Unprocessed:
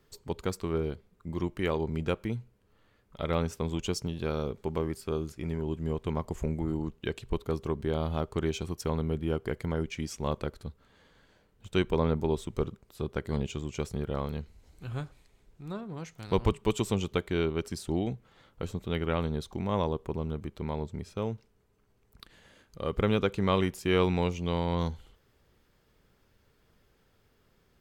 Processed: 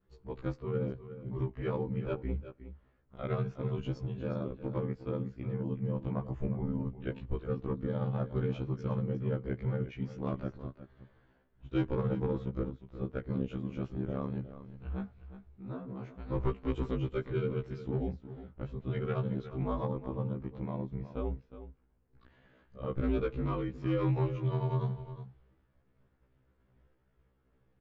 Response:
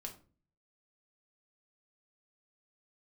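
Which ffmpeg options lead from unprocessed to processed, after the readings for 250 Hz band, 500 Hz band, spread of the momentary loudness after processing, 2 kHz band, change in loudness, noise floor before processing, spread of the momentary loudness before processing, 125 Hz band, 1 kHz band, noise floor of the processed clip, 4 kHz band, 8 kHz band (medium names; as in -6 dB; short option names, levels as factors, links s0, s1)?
-3.0 dB, -5.0 dB, 12 LU, -9.5 dB, -3.5 dB, -68 dBFS, 11 LU, -0.5 dB, -7.0 dB, -71 dBFS, -15.5 dB, under -25 dB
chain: -af "aresample=16000,volume=11.2,asoftclip=hard,volume=0.0891,aresample=44100,aeval=exprs='val(0)*sin(2*PI*48*n/s)':c=same,lowpass=2000,lowshelf=f=200:g=5.5,acontrast=89,aecho=1:1:362:0.224,agate=range=0.0224:threshold=0.00178:ratio=3:detection=peak,afftfilt=real='re*1.73*eq(mod(b,3),0)':imag='im*1.73*eq(mod(b,3),0)':win_size=2048:overlap=0.75,volume=0.447"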